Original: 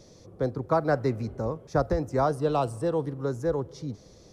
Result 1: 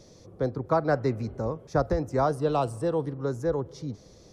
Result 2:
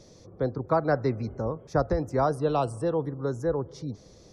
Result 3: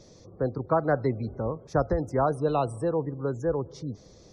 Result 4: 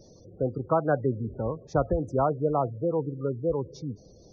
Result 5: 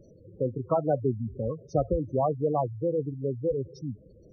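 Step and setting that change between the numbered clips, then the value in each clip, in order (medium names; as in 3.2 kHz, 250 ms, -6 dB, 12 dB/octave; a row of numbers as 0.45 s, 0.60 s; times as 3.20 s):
spectral gate, under each frame's peak: -60 dB, -45 dB, -35 dB, -20 dB, -10 dB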